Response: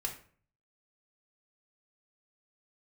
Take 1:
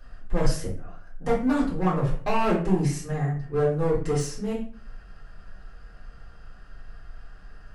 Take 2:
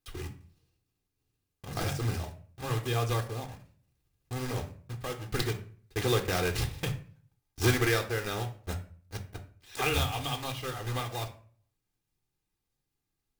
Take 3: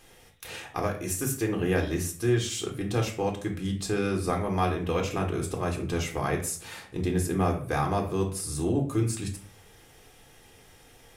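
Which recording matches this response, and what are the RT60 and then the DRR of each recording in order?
3; 0.45, 0.45, 0.45 s; -6.5, 6.0, 1.5 dB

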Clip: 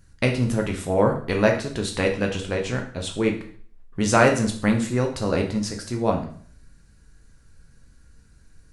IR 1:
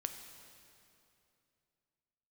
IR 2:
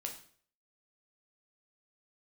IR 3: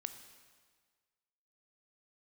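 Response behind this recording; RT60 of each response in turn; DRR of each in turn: 2; 2.7, 0.50, 1.6 s; 6.0, 2.0, 8.5 dB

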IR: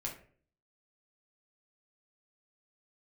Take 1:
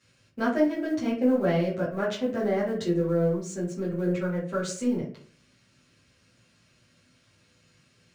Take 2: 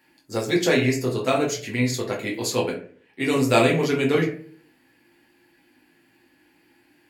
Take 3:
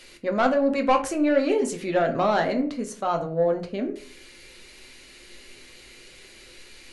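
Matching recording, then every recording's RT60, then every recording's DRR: 2; 0.50, 0.50, 0.50 s; -9.5, -3.0, 4.0 dB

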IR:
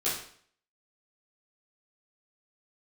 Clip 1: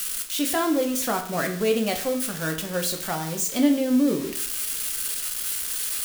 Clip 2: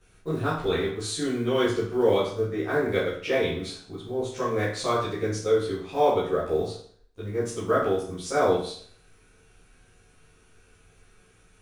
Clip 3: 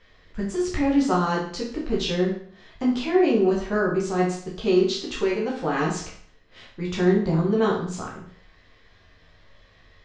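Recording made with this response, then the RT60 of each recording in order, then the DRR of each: 2; 0.55, 0.55, 0.55 s; 4.0, -11.0, -4.5 dB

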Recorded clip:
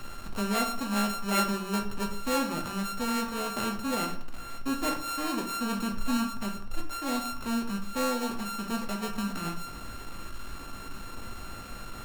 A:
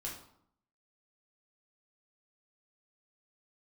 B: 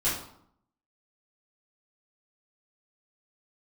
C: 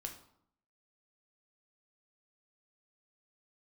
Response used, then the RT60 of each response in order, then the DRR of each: C; 0.70, 0.70, 0.70 s; -4.0, -11.5, 3.0 dB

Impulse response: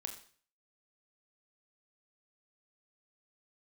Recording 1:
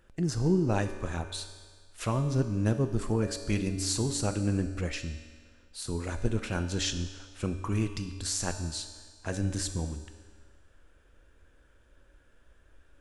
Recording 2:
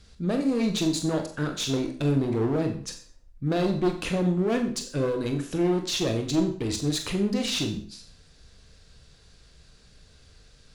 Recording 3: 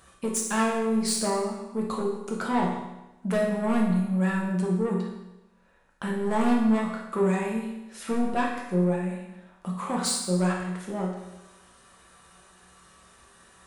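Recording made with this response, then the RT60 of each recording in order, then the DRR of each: 2; 1.6, 0.45, 1.0 s; 7.0, 4.5, -2.5 dB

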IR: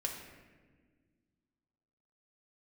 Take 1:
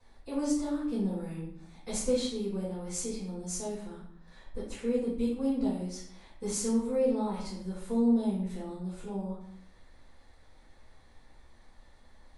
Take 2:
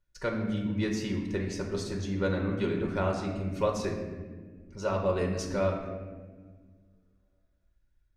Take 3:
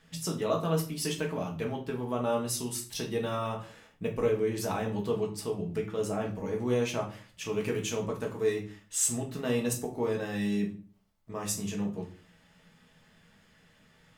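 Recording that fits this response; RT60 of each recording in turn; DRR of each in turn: 2; 0.70, 1.5, 0.40 s; -9.0, 0.0, -1.0 dB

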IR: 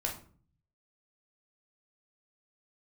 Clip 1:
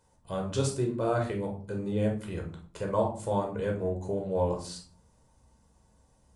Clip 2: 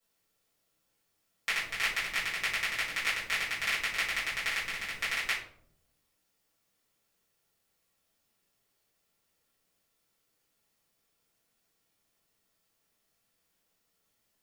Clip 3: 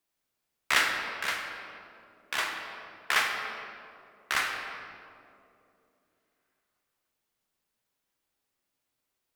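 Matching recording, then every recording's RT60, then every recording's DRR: 1; 0.45, 0.70, 2.8 s; -0.5, -10.5, 1.5 dB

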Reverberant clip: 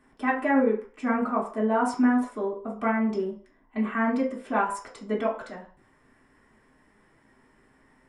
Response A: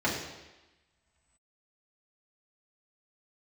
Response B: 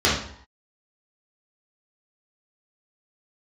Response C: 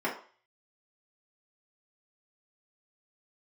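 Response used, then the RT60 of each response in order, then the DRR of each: C; 1.1, 0.65, 0.40 s; -7.0, -9.0, -6.5 dB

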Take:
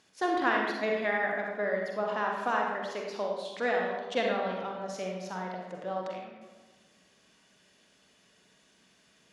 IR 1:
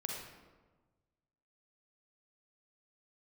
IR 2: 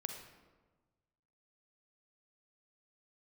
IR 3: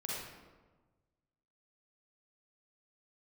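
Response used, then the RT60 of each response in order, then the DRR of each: 1; 1.3, 1.3, 1.3 s; -0.5, 4.5, -5.5 dB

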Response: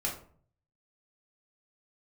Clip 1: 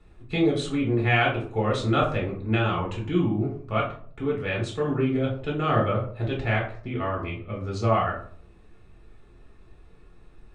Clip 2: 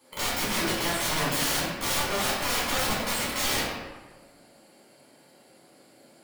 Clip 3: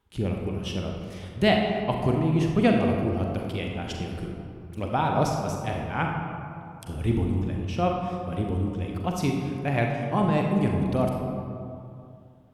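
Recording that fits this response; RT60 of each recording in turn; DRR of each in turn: 1; 0.50, 1.2, 2.5 s; -3.0, -7.5, 0.5 dB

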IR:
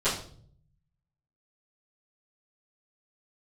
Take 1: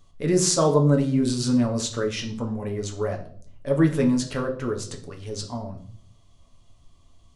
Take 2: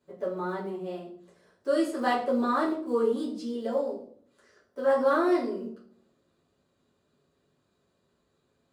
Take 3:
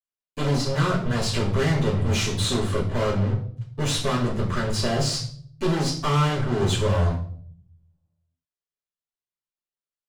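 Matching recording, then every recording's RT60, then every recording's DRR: 3; 0.55, 0.55, 0.55 s; 1.5, -7.5, -16.5 dB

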